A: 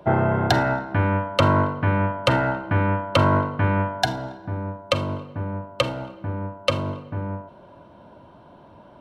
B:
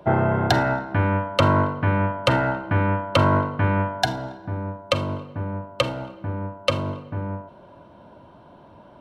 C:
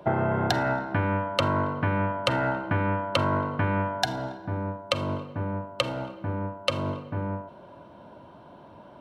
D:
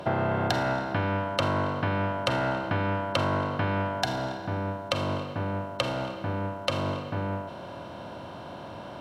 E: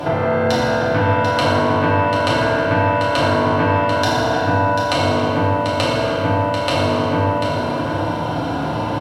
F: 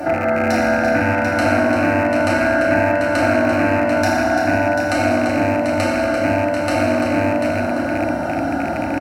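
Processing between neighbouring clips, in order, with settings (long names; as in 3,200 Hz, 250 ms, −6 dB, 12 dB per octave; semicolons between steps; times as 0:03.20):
no processing that can be heard
low-shelf EQ 61 Hz −9.5 dB; downward compressor, threshold −21 dBFS, peak gain reduction 7.5 dB
compressor on every frequency bin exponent 0.6; level −4 dB
downward compressor 4 to 1, threshold −32 dBFS, peak gain reduction 9.5 dB; on a send: single-tap delay 741 ms −7.5 dB; on the sum: feedback delay network reverb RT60 1.7 s, low-frequency decay 1.4×, high-frequency decay 0.7×, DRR −7.5 dB; level +9 dB
loose part that buzzes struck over −21 dBFS, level −15 dBFS; phaser with its sweep stopped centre 680 Hz, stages 8; single-tap delay 342 ms −8 dB; level +3 dB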